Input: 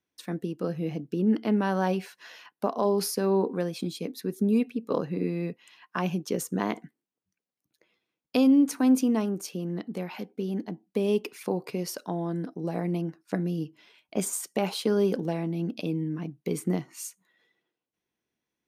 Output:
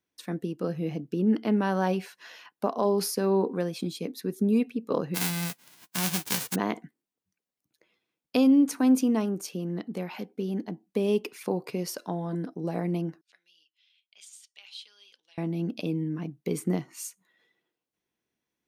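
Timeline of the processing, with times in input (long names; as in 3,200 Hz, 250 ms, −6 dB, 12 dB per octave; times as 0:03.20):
0:05.14–0:06.54: spectral envelope flattened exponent 0.1
0:11.95–0:12.35: hum removal 340 Hz, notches 39
0:13.21–0:15.38: four-pole ladder band-pass 3,800 Hz, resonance 45%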